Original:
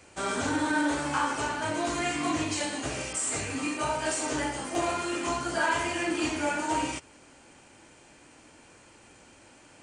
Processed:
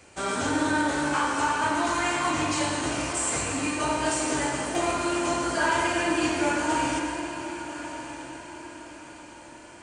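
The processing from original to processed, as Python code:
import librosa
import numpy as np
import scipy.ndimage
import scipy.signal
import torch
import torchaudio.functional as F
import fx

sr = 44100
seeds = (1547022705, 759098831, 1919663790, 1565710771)

y = fx.graphic_eq(x, sr, hz=(125, 500, 1000), db=(-6, -7, 7), at=(1.41, 2.3))
y = fx.echo_diffused(y, sr, ms=1157, feedback_pct=41, wet_db=-11)
y = fx.rev_plate(y, sr, seeds[0], rt60_s=2.5, hf_ratio=0.65, predelay_ms=80, drr_db=3.5)
y = F.gain(torch.from_numpy(y), 1.5).numpy()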